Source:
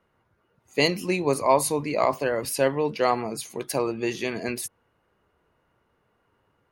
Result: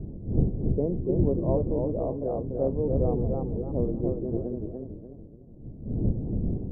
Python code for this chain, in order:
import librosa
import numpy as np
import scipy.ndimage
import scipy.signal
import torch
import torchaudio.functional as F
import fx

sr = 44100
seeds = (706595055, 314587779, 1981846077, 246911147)

y = fx.dmg_wind(x, sr, seeds[0], corner_hz=180.0, level_db=-28.0)
y = scipy.signal.sosfilt(scipy.signal.cheby2(4, 70, 2500.0, 'lowpass', fs=sr, output='sos'), y)
y = fx.echo_warbled(y, sr, ms=288, feedback_pct=40, rate_hz=2.8, cents=136, wet_db=-4.0)
y = y * librosa.db_to_amplitude(-3.0)